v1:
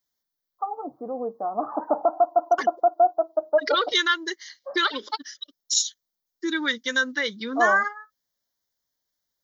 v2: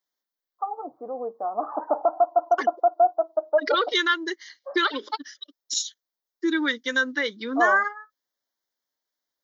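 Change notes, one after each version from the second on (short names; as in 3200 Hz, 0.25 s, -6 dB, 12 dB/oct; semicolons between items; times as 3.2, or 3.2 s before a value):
second voice: add bell 290 Hz +9 dB 0.98 oct; master: add tone controls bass -14 dB, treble -6 dB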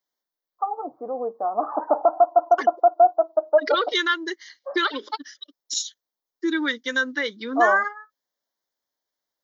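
first voice +3.5 dB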